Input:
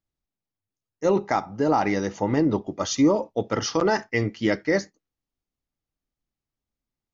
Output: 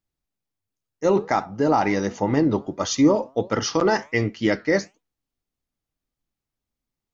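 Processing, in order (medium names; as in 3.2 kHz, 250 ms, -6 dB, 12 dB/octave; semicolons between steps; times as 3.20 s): flange 1.4 Hz, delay 3.9 ms, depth 5 ms, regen +88%; trim +6.5 dB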